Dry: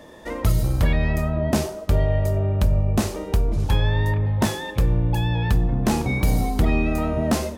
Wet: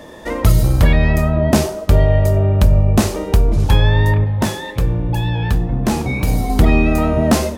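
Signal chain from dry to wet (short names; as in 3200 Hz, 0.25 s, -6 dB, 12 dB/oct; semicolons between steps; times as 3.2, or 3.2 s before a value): 4.24–6.5 flange 1.9 Hz, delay 6.7 ms, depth 6.8 ms, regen -71%; gain +7.5 dB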